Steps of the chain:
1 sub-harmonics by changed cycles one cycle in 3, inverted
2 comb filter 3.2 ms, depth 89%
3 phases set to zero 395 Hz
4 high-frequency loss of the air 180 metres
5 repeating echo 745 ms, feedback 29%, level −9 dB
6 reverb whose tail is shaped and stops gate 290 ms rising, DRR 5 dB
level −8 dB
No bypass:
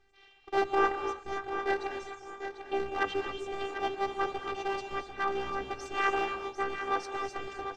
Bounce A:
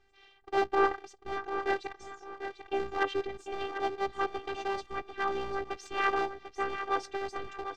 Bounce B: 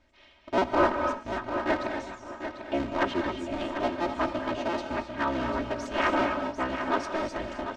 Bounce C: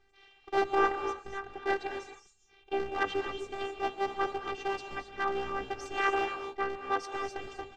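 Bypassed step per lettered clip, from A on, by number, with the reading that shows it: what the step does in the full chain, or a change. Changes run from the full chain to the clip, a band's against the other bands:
6, echo-to-direct ratio −3.0 dB to −8.5 dB
3, 250 Hz band +8.0 dB
5, echo-to-direct ratio −3.0 dB to −5.0 dB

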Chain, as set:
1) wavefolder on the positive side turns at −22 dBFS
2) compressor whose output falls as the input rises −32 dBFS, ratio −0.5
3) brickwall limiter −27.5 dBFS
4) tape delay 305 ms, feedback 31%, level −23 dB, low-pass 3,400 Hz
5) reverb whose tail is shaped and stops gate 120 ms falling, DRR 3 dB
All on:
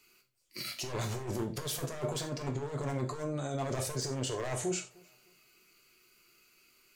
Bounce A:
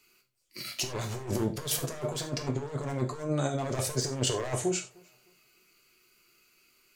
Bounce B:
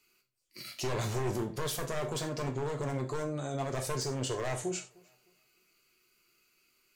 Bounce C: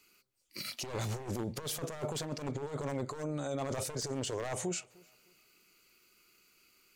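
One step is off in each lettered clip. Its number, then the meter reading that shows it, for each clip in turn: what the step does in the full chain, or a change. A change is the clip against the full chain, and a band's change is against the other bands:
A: 3, average gain reduction 2.5 dB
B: 2, change in momentary loudness spread +2 LU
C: 5, 125 Hz band −1.5 dB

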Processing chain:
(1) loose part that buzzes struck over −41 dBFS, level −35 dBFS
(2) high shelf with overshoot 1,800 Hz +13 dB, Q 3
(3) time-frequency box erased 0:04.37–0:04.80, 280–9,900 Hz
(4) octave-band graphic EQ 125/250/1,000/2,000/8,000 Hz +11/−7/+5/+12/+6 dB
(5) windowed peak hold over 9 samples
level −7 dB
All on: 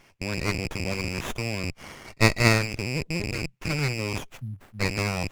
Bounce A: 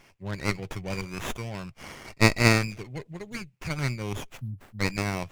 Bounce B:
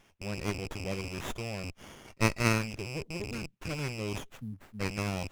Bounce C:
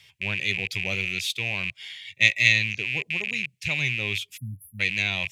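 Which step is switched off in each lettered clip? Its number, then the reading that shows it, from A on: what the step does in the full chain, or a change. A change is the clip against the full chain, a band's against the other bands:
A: 1, change in crest factor +1.5 dB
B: 4, 4 kHz band −2.5 dB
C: 5, 2 kHz band +14.0 dB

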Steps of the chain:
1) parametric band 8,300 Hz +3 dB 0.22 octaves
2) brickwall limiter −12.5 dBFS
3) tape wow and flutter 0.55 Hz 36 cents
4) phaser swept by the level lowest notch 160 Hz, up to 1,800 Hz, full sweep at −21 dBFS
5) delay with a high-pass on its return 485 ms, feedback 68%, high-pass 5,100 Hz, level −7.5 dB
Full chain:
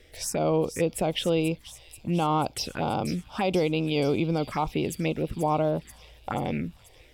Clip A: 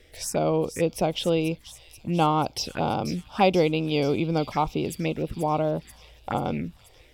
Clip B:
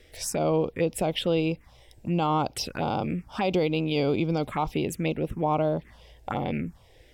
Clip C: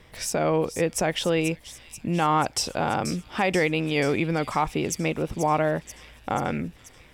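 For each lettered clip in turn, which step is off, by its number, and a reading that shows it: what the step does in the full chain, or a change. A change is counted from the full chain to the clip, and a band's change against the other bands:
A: 2, change in crest factor +5.5 dB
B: 5, echo-to-direct ratio −22.5 dB to none audible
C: 4, 2 kHz band +6.0 dB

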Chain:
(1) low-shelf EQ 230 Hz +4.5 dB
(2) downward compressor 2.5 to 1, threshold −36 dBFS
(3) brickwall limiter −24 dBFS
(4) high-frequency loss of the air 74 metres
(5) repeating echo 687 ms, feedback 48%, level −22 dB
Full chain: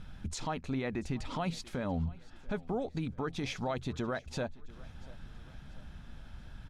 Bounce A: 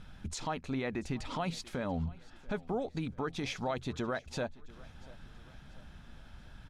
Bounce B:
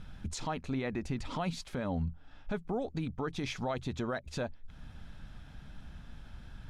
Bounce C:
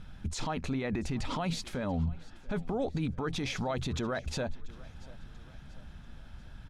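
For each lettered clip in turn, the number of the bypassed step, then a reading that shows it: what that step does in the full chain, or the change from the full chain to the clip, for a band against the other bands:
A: 1, 125 Hz band −2.5 dB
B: 5, echo-to-direct ratio −21.0 dB to none audible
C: 2, average gain reduction 7.5 dB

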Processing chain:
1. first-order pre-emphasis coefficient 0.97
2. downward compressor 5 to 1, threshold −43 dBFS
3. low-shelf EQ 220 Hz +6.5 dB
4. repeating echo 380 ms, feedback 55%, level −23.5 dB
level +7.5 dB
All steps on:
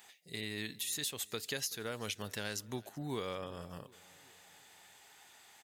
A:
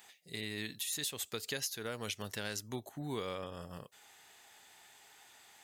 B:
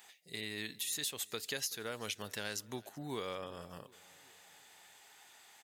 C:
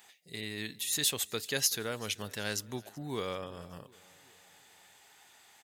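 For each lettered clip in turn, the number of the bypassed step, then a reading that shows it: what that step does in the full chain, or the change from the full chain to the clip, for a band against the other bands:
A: 4, echo-to-direct ratio −22.0 dB to none audible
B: 3, 125 Hz band −4.5 dB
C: 2, average gain reduction 2.0 dB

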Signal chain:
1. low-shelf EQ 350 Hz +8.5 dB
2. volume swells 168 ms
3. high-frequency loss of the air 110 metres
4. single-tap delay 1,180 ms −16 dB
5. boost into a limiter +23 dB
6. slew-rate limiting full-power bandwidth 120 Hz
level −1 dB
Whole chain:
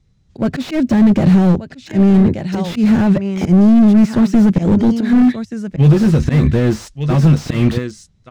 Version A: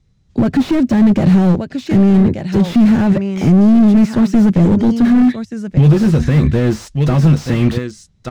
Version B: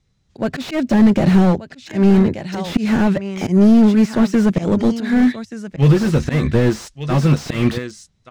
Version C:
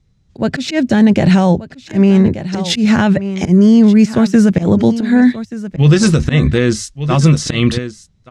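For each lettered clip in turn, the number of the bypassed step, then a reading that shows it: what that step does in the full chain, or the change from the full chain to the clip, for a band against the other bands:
2, change in momentary loudness spread −3 LU
1, 125 Hz band −4.0 dB
6, distortion level −8 dB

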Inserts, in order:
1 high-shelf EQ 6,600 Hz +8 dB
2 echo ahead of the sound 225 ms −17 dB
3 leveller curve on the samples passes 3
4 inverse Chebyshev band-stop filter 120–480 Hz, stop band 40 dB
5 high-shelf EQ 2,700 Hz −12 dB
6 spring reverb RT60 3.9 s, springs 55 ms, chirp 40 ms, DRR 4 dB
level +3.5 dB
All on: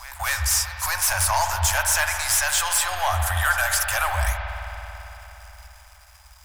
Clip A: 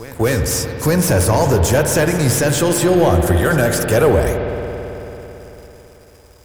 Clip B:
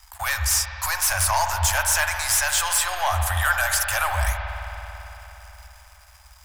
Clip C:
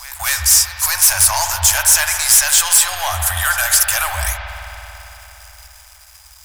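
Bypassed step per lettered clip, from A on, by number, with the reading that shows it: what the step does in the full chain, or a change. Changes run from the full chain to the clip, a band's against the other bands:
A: 4, 500 Hz band +19.5 dB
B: 2, change in momentary loudness spread +1 LU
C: 5, 8 kHz band +9.5 dB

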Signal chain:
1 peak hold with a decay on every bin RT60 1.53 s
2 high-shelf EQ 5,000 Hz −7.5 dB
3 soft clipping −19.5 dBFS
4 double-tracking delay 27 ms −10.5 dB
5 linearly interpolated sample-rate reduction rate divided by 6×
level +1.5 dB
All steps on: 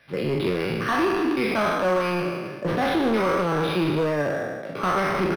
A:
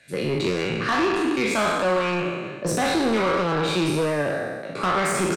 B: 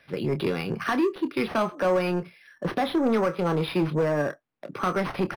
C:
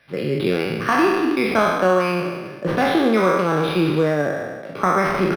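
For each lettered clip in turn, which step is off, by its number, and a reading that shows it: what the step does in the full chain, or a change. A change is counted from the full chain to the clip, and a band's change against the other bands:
5, 8 kHz band +11.5 dB
1, 2 kHz band −3.0 dB
3, distortion level −10 dB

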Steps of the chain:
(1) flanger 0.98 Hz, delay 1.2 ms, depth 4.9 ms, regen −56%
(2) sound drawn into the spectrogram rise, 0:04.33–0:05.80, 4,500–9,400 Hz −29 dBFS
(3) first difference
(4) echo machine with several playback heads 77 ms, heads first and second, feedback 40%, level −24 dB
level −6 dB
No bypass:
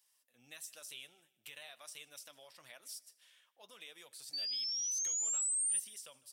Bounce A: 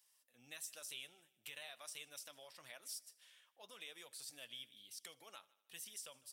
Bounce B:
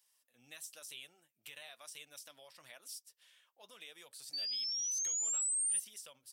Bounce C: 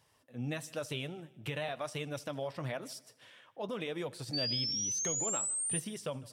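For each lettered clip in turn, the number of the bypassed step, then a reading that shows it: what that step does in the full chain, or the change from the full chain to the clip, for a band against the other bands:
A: 2, 8 kHz band −16.0 dB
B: 4, echo-to-direct ratio −19.5 dB to none audible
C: 3, 250 Hz band +18.5 dB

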